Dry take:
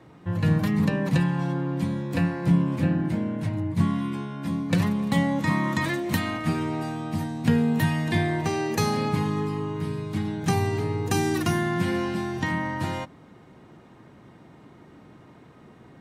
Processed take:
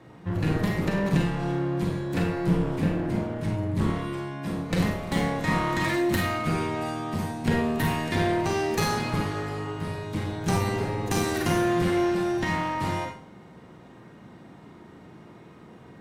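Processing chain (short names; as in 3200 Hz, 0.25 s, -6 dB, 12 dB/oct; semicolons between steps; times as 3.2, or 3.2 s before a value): one-sided clip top -28 dBFS; Schroeder reverb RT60 0.45 s, combs from 33 ms, DRR 1.5 dB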